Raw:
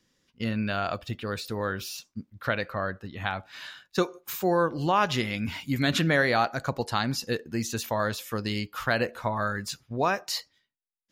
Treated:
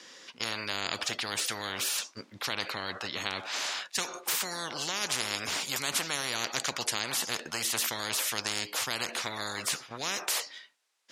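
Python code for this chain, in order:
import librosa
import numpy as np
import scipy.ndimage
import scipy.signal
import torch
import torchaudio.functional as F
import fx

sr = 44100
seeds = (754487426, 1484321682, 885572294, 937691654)

y = fx.bandpass_edges(x, sr, low_hz=520.0, high_hz=7600.0)
y = fx.spectral_comp(y, sr, ratio=10.0)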